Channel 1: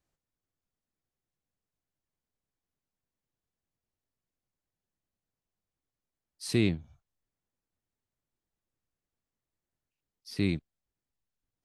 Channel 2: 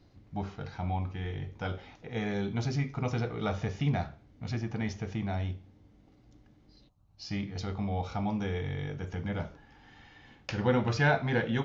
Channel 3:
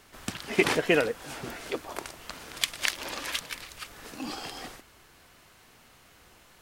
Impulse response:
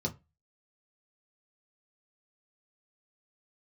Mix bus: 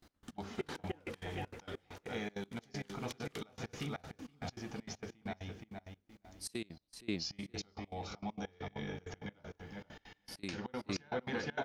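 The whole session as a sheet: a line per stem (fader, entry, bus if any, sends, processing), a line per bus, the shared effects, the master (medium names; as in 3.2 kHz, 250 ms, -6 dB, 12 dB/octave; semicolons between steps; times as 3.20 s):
-1.0 dB, 0.00 s, bus A, no send, echo send -6 dB, upward expansion 1.5:1, over -41 dBFS
-0.5 dB, 0.00 s, bus A, no send, echo send -10.5 dB, none
-9.5 dB, 0.00 s, no bus, send -13.5 dB, echo send -13.5 dB, auto duck -10 dB, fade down 0.25 s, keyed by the second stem
bus A: 0.0 dB, treble shelf 5.4 kHz +11.5 dB; compression 4:1, threshold -36 dBFS, peak gain reduction 13 dB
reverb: on, RT60 0.25 s, pre-delay 3 ms
echo: feedback delay 471 ms, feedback 27%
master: gate with hold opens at -51 dBFS; peaking EQ 110 Hz -10.5 dB 0.95 oct; trance gate "x..x.xxx.x." 197 bpm -24 dB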